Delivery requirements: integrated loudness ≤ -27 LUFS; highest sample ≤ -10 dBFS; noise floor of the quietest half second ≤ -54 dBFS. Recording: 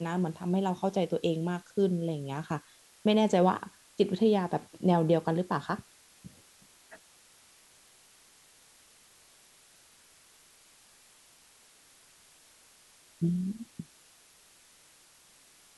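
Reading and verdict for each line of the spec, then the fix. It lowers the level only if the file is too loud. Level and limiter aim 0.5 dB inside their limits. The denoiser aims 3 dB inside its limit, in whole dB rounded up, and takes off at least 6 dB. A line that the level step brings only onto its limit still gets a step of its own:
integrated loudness -29.5 LUFS: pass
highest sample -12.0 dBFS: pass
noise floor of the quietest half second -60 dBFS: pass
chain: none needed

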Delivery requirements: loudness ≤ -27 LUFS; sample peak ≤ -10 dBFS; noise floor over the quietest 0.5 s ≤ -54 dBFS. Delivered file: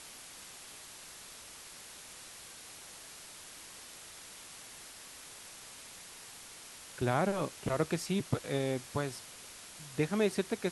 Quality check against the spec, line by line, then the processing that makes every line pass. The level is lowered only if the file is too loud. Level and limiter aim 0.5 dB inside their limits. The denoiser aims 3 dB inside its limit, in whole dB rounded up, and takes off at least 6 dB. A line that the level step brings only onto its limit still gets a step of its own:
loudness -38.5 LUFS: pass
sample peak -16.0 dBFS: pass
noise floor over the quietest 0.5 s -51 dBFS: fail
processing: noise reduction 6 dB, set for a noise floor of -51 dBFS

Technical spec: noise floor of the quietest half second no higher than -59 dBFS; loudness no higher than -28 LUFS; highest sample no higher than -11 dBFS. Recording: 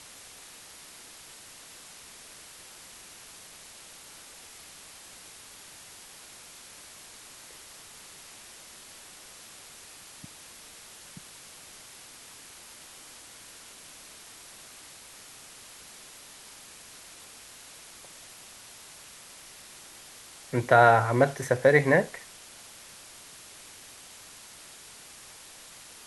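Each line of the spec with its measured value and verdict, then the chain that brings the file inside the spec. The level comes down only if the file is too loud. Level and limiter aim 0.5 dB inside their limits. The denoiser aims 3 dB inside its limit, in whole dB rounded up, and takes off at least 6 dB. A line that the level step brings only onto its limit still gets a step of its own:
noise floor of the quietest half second -49 dBFS: fail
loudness -22.5 LUFS: fail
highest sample -5.5 dBFS: fail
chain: noise reduction 7 dB, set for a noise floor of -49 dBFS; trim -6 dB

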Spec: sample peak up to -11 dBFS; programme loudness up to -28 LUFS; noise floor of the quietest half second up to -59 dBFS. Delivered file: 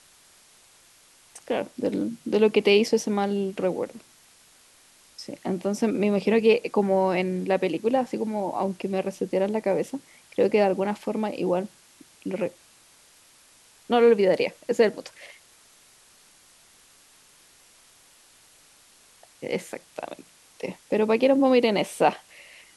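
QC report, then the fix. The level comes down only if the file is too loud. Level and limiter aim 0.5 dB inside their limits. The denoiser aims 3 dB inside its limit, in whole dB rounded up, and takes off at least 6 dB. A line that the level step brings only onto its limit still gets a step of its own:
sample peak -7.0 dBFS: fail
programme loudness -24.5 LUFS: fail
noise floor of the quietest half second -56 dBFS: fail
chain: trim -4 dB; peak limiter -11.5 dBFS

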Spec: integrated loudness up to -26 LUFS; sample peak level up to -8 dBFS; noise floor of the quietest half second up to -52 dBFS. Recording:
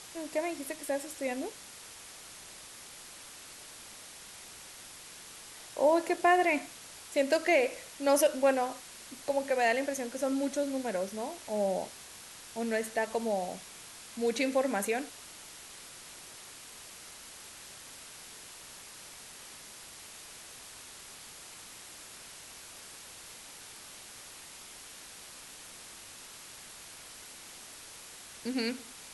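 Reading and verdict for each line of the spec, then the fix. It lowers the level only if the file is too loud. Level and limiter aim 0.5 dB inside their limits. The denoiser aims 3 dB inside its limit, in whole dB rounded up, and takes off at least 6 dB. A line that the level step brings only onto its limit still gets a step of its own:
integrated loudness -31.0 LUFS: pass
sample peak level -14.0 dBFS: pass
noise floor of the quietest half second -49 dBFS: fail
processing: noise reduction 6 dB, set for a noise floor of -49 dBFS

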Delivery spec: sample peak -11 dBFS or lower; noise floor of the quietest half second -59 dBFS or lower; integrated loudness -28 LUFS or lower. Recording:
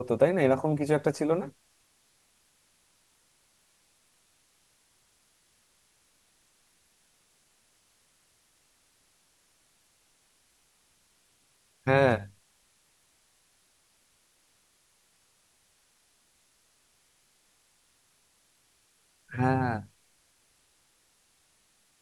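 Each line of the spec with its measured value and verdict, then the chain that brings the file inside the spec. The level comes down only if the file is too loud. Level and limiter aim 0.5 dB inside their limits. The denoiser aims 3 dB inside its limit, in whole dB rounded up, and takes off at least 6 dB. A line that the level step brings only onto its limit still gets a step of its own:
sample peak -8.0 dBFS: fail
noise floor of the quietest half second -68 dBFS: pass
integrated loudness -27.0 LUFS: fail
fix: trim -1.5 dB; peak limiter -11.5 dBFS

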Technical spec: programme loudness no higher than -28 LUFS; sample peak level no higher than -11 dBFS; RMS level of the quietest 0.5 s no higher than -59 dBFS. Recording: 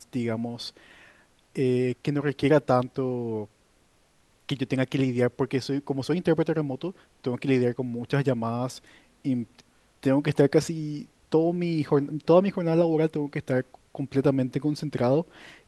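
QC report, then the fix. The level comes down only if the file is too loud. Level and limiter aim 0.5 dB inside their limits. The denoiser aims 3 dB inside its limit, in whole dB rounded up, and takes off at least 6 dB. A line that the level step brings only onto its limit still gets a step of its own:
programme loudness -26.0 LUFS: fail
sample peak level -6.5 dBFS: fail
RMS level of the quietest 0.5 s -63 dBFS: pass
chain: trim -2.5 dB; peak limiter -11.5 dBFS

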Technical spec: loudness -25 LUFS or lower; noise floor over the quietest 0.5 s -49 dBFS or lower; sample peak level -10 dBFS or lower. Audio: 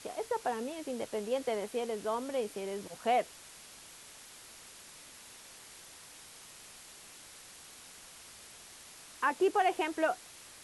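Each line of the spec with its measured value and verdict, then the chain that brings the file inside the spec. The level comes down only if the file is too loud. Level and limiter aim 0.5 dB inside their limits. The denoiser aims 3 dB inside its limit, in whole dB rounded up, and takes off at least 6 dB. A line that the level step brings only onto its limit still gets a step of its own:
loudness -34.0 LUFS: pass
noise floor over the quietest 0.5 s -53 dBFS: pass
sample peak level -17.0 dBFS: pass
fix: none needed

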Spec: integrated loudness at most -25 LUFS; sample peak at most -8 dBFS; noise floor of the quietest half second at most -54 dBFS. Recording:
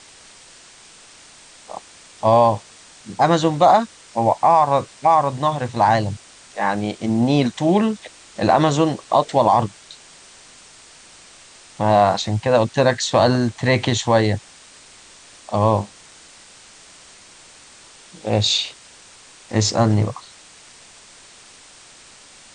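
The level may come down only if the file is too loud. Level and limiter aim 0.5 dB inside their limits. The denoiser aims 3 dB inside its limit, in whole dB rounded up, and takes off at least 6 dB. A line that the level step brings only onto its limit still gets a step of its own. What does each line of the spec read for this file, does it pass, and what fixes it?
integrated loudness -18.5 LUFS: fail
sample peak -4.0 dBFS: fail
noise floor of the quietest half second -46 dBFS: fail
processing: noise reduction 6 dB, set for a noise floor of -46 dBFS; trim -7 dB

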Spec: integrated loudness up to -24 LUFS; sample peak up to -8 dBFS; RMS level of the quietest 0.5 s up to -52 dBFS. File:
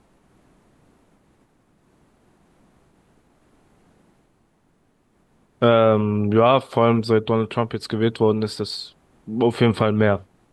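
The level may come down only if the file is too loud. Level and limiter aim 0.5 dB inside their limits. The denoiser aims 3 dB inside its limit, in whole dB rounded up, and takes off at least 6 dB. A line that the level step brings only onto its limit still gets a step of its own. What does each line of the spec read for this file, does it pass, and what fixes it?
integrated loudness -20.0 LUFS: fail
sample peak -4.0 dBFS: fail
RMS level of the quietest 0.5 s -63 dBFS: pass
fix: trim -4.5 dB

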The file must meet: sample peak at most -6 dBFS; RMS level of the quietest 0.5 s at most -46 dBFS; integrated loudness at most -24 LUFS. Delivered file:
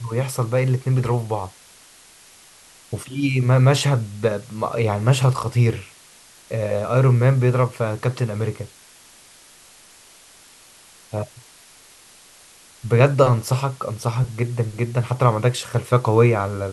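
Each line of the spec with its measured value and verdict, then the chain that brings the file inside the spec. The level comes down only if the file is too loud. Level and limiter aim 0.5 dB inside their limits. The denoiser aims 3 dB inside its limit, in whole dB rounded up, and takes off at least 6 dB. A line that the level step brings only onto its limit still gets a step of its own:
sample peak -1.5 dBFS: fail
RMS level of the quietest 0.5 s -49 dBFS: pass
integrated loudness -20.5 LUFS: fail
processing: trim -4 dB; peak limiter -6.5 dBFS

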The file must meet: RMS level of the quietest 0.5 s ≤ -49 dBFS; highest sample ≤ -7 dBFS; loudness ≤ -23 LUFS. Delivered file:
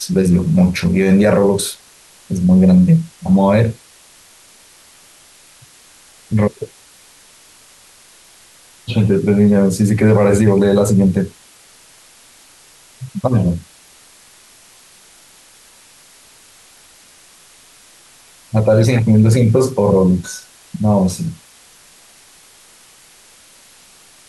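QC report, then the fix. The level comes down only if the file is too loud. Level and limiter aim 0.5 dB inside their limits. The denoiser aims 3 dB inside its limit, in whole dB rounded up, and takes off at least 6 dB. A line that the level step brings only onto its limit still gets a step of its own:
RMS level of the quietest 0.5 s -46 dBFS: fail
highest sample -3.5 dBFS: fail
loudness -14.0 LUFS: fail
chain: trim -9.5 dB

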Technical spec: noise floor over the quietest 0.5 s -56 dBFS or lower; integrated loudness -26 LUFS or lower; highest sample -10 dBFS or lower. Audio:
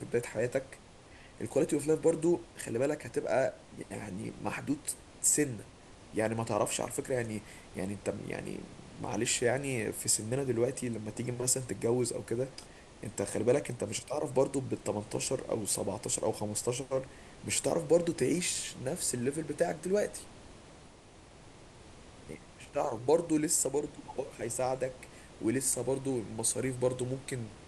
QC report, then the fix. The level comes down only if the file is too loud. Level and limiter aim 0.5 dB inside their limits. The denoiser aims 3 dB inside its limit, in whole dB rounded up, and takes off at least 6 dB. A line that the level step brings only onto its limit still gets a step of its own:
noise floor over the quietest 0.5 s -55 dBFS: fail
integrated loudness -32.5 LUFS: pass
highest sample -13.0 dBFS: pass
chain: noise reduction 6 dB, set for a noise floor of -55 dBFS

